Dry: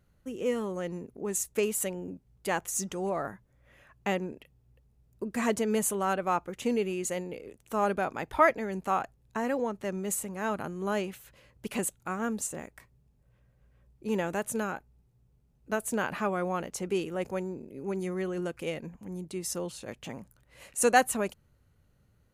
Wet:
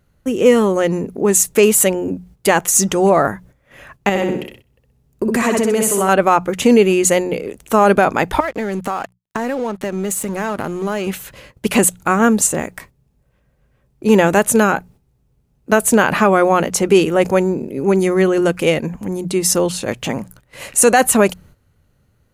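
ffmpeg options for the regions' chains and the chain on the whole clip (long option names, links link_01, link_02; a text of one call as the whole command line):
ffmpeg -i in.wav -filter_complex "[0:a]asettb=1/sr,asplit=3[link_01][link_02][link_03];[link_01]atrim=end=4.094[link_04];[link_02]atrim=start=4.09:end=6.09,asetpts=PTS-STARTPTS,afade=type=in:duration=0.004:curve=qsin,afade=type=out:start_time=1.996:duration=0.004:curve=qsin,aecho=1:1:63|126|189|252|315:0.668|0.247|0.0915|0.0339|0.0125,atrim=end_sample=88200,acompressor=threshold=-32dB:ratio=5:attack=3.2:release=140:knee=1:detection=peak[link_05];[link_03]atrim=start=6.086[link_06];[link_04][link_05]acrossfade=duration=0.004:curve1=hsin:curve2=qsin[link_07];[link_07][link_06]acrossfade=duration=0.004:curve1=qsin:curve2=hsin,asettb=1/sr,asplit=3[link_08][link_09][link_10];[link_08]atrim=end=8.404[link_11];[link_09]atrim=start=8.4:end=11.07,asetpts=PTS-STARTPTS,afade=type=in:duration=0.004:curve=qsin,afade=type=out:start_time=2.666:duration=0.004:curve=qsin,acompressor=threshold=-35dB:ratio=10:attack=3.2:release=140:knee=1:detection=peak,aeval=exprs='sgn(val(0))*max(abs(val(0))-0.00168,0)':channel_layout=same[link_12];[link_10]atrim=start=11.066[link_13];[link_11][link_12]acrossfade=duration=0.004:curve1=hsin:curve2=qsin[link_14];[link_14][link_13]acrossfade=duration=0.004:curve1=qsin:curve2=hsin,bandreject=frequency=60:width_type=h:width=6,bandreject=frequency=120:width_type=h:width=6,bandreject=frequency=180:width_type=h:width=6,agate=range=-11dB:threshold=-60dB:ratio=16:detection=peak,alimiter=level_in=20dB:limit=-1dB:release=50:level=0:latency=1,volume=-1dB" out.wav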